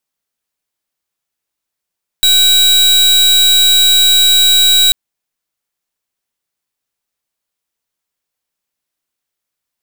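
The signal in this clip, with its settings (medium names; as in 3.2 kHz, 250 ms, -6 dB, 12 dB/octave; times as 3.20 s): pulse 3.87 kHz, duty 39% -8.5 dBFS 2.69 s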